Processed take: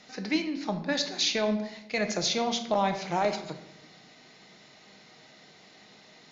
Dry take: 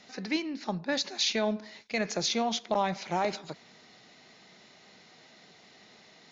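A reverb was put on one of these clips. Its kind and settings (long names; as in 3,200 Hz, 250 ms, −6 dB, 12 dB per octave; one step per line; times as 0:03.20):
rectangular room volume 260 cubic metres, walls mixed, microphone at 0.52 metres
level +1 dB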